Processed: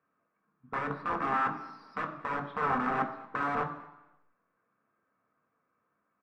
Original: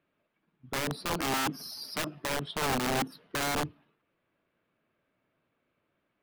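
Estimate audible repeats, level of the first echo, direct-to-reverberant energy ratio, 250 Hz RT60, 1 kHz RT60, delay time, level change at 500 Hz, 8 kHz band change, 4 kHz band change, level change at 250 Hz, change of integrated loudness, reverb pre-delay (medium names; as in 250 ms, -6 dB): 1, -22.5 dB, 3.0 dB, 0.90 s, 1.0 s, 227 ms, -2.5 dB, under -25 dB, -19.0 dB, -3.0 dB, -0.5 dB, 3 ms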